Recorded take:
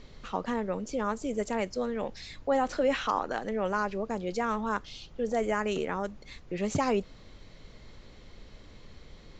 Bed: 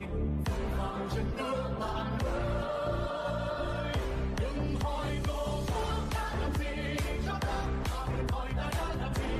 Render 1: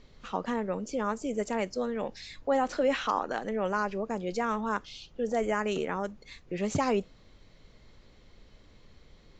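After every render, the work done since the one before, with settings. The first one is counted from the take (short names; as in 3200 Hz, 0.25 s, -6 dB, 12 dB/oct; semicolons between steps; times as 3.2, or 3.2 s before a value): noise print and reduce 6 dB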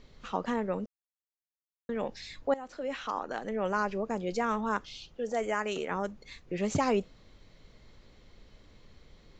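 0.86–1.89 mute; 2.54–3.8 fade in, from -18 dB; 5.14–5.91 low shelf 310 Hz -9 dB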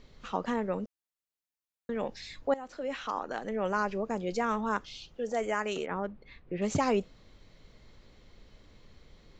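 5.86–6.62 air absorption 350 m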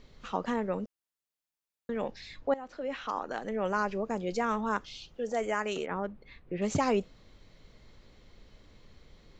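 2.11–3.08 air absorption 87 m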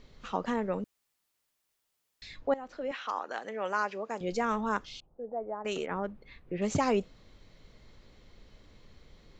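0.84–2.22 room tone; 2.91–4.21 weighting filter A; 5–5.65 ladder low-pass 1000 Hz, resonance 40%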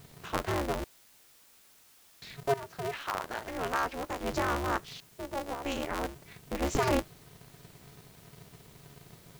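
requantised 10-bit, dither triangular; polarity switched at an audio rate 140 Hz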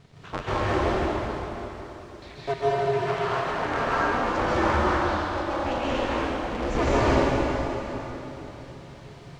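air absorption 120 m; plate-style reverb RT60 3.7 s, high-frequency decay 0.85×, pre-delay 0.12 s, DRR -9 dB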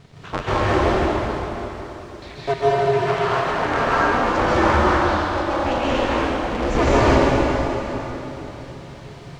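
gain +6 dB; limiter -3 dBFS, peak gain reduction 2 dB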